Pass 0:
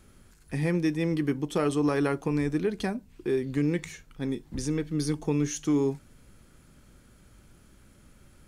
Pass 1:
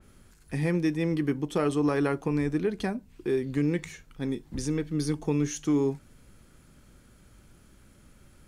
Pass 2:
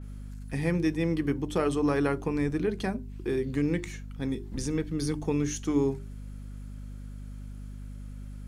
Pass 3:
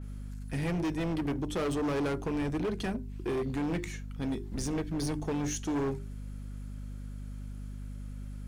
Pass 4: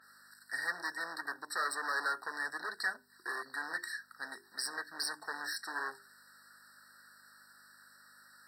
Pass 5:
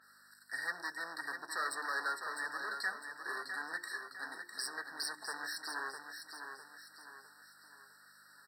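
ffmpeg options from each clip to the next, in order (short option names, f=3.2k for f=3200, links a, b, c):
-af "adynamicequalizer=threshold=0.00501:dfrequency=3000:dqfactor=0.7:tfrequency=3000:tqfactor=0.7:attack=5:release=100:ratio=0.375:range=1.5:mode=cutabove:tftype=highshelf"
-af "bandreject=f=50:t=h:w=6,bandreject=f=100:t=h:w=6,bandreject=f=150:t=h:w=6,bandreject=f=200:t=h:w=6,bandreject=f=250:t=h:w=6,bandreject=f=300:t=h:w=6,bandreject=f=350:t=h:w=6,bandreject=f=400:t=h:w=6,aeval=exprs='val(0)+0.0112*(sin(2*PI*50*n/s)+sin(2*PI*2*50*n/s)/2+sin(2*PI*3*50*n/s)/3+sin(2*PI*4*50*n/s)/4+sin(2*PI*5*50*n/s)/5)':c=same"
-af "asoftclip=type=hard:threshold=-28dB"
-af "highpass=f=1.7k:t=q:w=1.9,afftfilt=real='re*eq(mod(floor(b*sr/1024/1900),2),0)':imag='im*eq(mod(floor(b*sr/1024/1900),2),0)':win_size=1024:overlap=0.75,volume=6dB"
-af "aecho=1:1:654|1308|1962|2616|3270:0.447|0.192|0.0826|0.0355|0.0153,volume=-2.5dB"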